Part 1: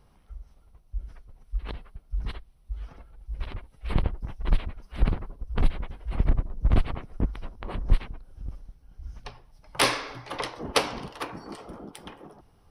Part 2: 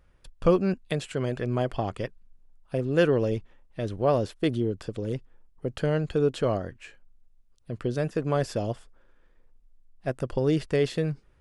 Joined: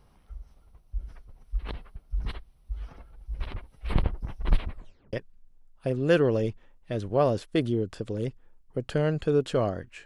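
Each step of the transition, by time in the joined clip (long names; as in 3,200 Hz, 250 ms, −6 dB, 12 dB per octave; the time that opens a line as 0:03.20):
part 1
0:04.70: tape stop 0.43 s
0:05.13: continue with part 2 from 0:02.01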